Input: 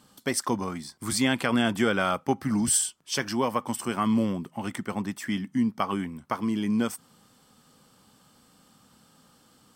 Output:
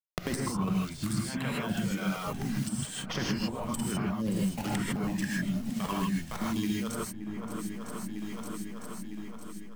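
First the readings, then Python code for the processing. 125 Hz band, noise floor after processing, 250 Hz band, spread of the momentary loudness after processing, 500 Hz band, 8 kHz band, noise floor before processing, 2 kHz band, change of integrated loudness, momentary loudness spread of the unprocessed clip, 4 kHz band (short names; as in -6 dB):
+1.5 dB, -41 dBFS, -3.5 dB, 8 LU, -7.5 dB, -9.0 dB, -61 dBFS, -6.0 dB, -5.5 dB, 9 LU, -5.0 dB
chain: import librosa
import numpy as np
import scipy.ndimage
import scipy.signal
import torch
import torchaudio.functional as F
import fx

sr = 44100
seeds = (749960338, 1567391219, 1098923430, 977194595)

p1 = fx.quant_float(x, sr, bits=2)
p2 = fx.backlash(p1, sr, play_db=-29.5)
p3 = fx.dereverb_blind(p2, sr, rt60_s=1.7)
p4 = fx.over_compress(p3, sr, threshold_db=-37.0, ratio=-1.0)
p5 = fx.peak_eq(p4, sr, hz=180.0, db=9.0, octaves=0.82)
p6 = p5 + fx.echo_swing(p5, sr, ms=954, ratio=1.5, feedback_pct=31, wet_db=-21.0, dry=0)
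p7 = fx.rev_gated(p6, sr, seeds[0], gate_ms=180, shape='rising', drr_db=-5.0)
p8 = fx.band_squash(p7, sr, depth_pct=100)
y = p8 * librosa.db_to_amplitude(-4.5)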